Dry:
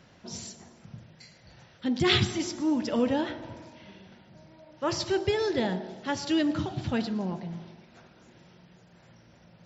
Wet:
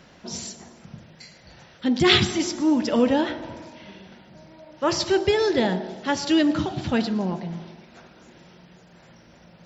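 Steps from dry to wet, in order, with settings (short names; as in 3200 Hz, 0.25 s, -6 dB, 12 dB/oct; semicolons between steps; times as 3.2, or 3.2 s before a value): bell 110 Hz -7.5 dB 0.66 oct; gain +6.5 dB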